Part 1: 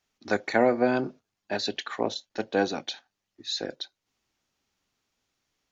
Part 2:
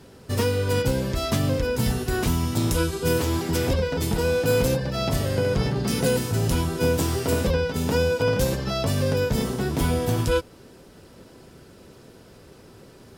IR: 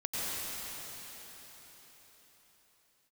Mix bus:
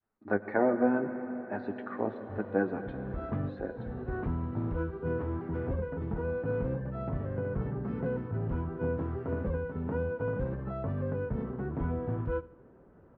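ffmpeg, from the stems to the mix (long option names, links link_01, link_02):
-filter_complex "[0:a]flanger=delay=8.8:depth=4:regen=34:speed=0.47:shape=triangular,volume=0dB,asplit=3[link_01][link_02][link_03];[link_02]volume=-13.5dB[link_04];[1:a]adelay=2000,volume=-9dB,asplit=2[link_05][link_06];[link_06]volume=-20dB[link_07];[link_03]apad=whole_len=669358[link_08];[link_05][link_08]sidechaincompress=threshold=-43dB:ratio=8:attack=21:release=339[link_09];[2:a]atrim=start_sample=2205[link_10];[link_04][link_10]afir=irnorm=-1:irlink=0[link_11];[link_07]aecho=0:1:77|154|231|308|385|462:1|0.43|0.185|0.0795|0.0342|0.0147[link_12];[link_01][link_09][link_11][link_12]amix=inputs=4:normalize=0,lowpass=frequency=1500:width=0.5412,lowpass=frequency=1500:width=1.3066,adynamicequalizer=threshold=0.00708:dfrequency=730:dqfactor=1.1:tfrequency=730:tqfactor=1.1:attack=5:release=100:ratio=0.375:range=2.5:mode=cutabove:tftype=bell"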